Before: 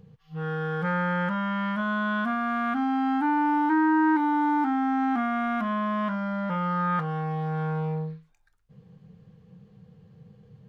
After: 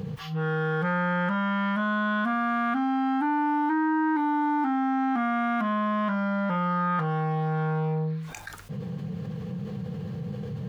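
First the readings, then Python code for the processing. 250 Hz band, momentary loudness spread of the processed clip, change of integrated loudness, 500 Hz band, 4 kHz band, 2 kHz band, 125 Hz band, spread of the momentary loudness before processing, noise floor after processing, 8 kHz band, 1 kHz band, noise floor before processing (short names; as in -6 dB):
-0.5 dB, 10 LU, -1.0 dB, +1.5 dB, +2.0 dB, 0.0 dB, +2.5 dB, 8 LU, -37 dBFS, n/a, 0.0 dB, -62 dBFS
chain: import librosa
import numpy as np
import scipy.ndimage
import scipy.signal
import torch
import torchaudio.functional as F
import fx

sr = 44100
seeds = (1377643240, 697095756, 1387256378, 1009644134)

y = scipy.signal.sosfilt(scipy.signal.butter(2, 91.0, 'highpass', fs=sr, output='sos'), x)
y = fx.env_flatten(y, sr, amount_pct=70)
y = y * librosa.db_to_amplitude(-3.5)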